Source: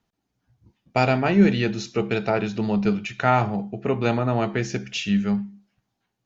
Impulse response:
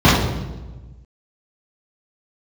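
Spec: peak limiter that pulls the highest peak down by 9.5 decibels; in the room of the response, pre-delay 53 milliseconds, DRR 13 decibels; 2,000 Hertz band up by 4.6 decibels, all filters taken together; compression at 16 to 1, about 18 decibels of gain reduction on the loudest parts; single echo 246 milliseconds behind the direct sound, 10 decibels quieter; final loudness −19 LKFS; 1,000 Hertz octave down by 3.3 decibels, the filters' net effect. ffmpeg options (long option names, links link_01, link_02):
-filter_complex "[0:a]equalizer=frequency=1000:width_type=o:gain=-7.5,equalizer=frequency=2000:width_type=o:gain=8,acompressor=threshold=-29dB:ratio=16,alimiter=limit=-23dB:level=0:latency=1,aecho=1:1:246:0.316,asplit=2[link_01][link_02];[1:a]atrim=start_sample=2205,adelay=53[link_03];[link_02][link_03]afir=irnorm=-1:irlink=0,volume=-41dB[link_04];[link_01][link_04]amix=inputs=2:normalize=0,volume=15.5dB"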